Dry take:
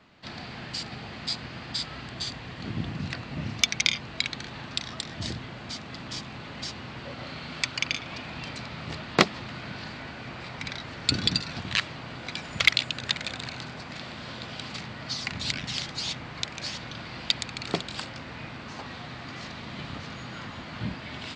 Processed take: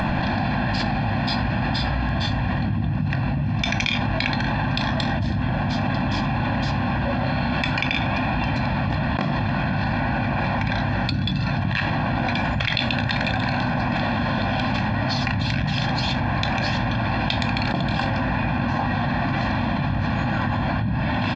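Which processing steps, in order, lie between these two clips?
upward compression, threshold −39 dBFS
head-to-tape spacing loss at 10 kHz 37 dB
comb filter 1.2 ms, depth 83%
convolution reverb RT60 0.35 s, pre-delay 4 ms, DRR 9 dB
envelope flattener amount 100%
level −5.5 dB

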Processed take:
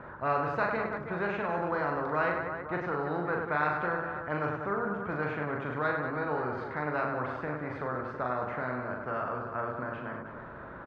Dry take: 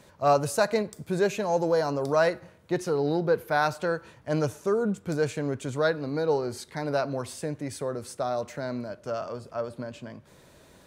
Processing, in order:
transistor ladder low-pass 1,500 Hz, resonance 65%
reverse bouncing-ball delay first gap 40 ms, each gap 1.5×, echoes 5
every bin compressed towards the loudest bin 2 to 1

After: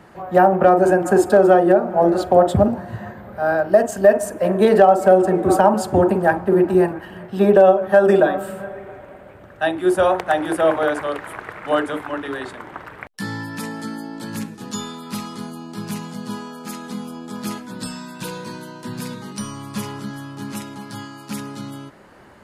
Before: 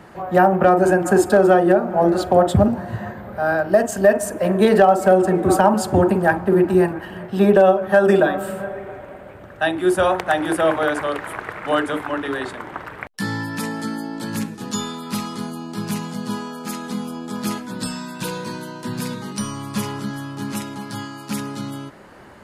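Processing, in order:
dynamic equaliser 560 Hz, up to +5 dB, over −23 dBFS, Q 0.73
level −3 dB

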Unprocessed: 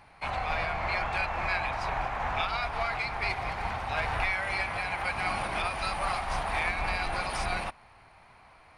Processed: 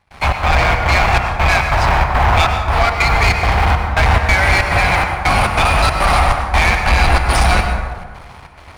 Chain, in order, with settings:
parametric band 68 Hz +11 dB 1.6 octaves
leveller curve on the samples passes 3
gate pattern ".xx.xxx.xxx." 140 BPM −24 dB
dense smooth reverb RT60 1.5 s, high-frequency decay 0.4×, pre-delay 85 ms, DRR 4 dB
level +8 dB

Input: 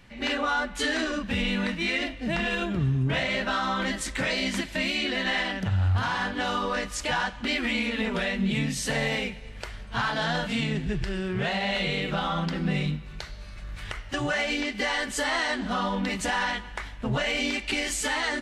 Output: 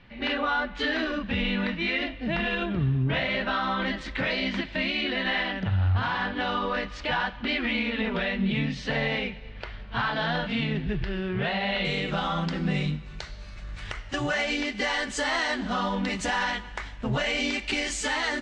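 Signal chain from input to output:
low-pass filter 4,100 Hz 24 dB per octave, from 0:11.85 7,800 Hz

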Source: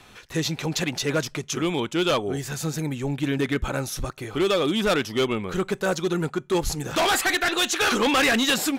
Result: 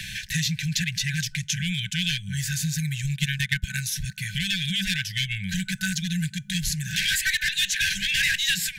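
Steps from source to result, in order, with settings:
0:03.01–0:03.81: transient designer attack +11 dB, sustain −10 dB
brick-wall band-stop 200–1,500 Hz
multiband upward and downward compressor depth 70%
level +1.5 dB

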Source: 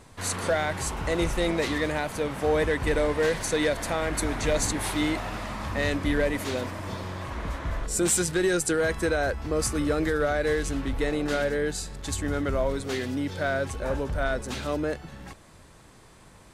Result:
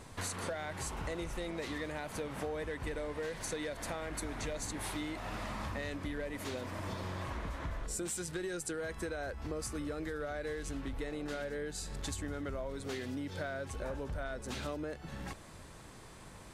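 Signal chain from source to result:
downward compressor 10 to 1, threshold −36 dBFS, peak gain reduction 16 dB

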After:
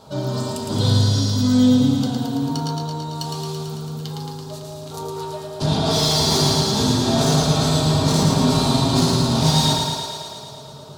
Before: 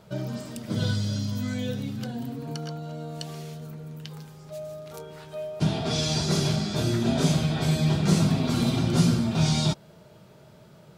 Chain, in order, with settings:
octave-band graphic EQ 1,000/2,000/4,000/8,000 Hz +9/−12/+10/+5 dB
soft clipping −21 dBFS, distortion −11 dB
feedback echo with a high-pass in the loop 111 ms, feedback 74%, high-pass 210 Hz, level −4 dB
convolution reverb RT60 0.85 s, pre-delay 4 ms, DRR −1.5 dB
level +3 dB

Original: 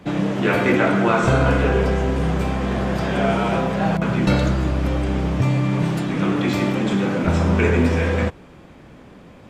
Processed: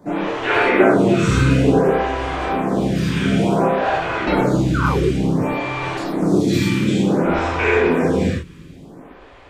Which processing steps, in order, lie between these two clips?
0:04.74–0:04.98: sound drawn into the spectrogram fall 330–1,600 Hz −14 dBFS
0:05.97–0:06.50: drawn EQ curve 650 Hz 0 dB, 2,900 Hz −12 dB, 4,300 Hz +6 dB
reverb whose tail is shaped and stops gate 150 ms flat, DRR −6.5 dB
phaser with staggered stages 0.56 Hz
level −1 dB

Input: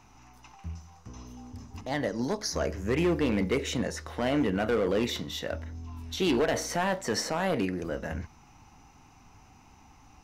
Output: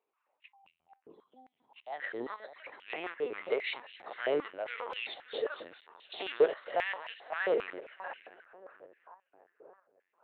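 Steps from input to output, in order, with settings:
noise reduction from a noise print of the clip's start 23 dB
echo with a time of its own for lows and highs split 1,400 Hz, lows 577 ms, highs 223 ms, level −12 dB
square-wave tremolo 1.5 Hz, depth 60%, duty 70%
linear-prediction vocoder at 8 kHz pitch kept
high-pass on a step sequencer 7.5 Hz 430–2,700 Hz
level −6 dB

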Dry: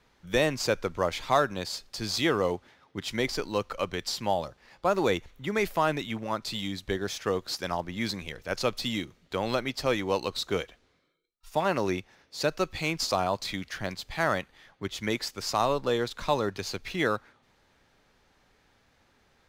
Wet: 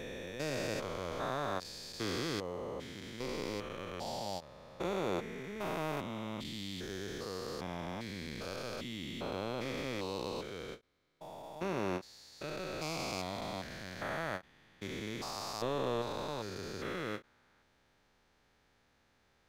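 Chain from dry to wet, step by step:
spectrum averaged block by block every 400 ms
every ending faded ahead of time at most 340 dB per second
level −4.5 dB

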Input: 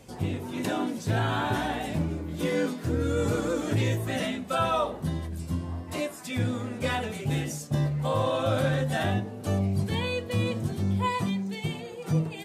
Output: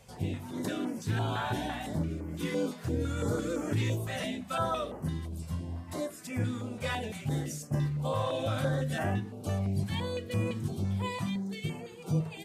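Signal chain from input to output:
notch on a step sequencer 5.9 Hz 300–3,700 Hz
level −3.5 dB

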